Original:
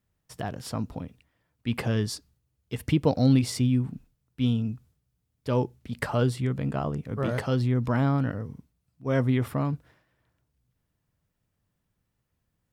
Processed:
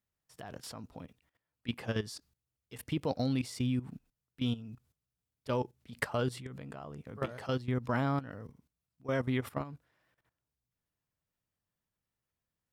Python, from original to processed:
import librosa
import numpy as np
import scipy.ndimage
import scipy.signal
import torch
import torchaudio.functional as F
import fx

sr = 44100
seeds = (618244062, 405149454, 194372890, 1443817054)

y = fx.low_shelf(x, sr, hz=350.0, db=-8.0)
y = fx.level_steps(y, sr, step_db=15)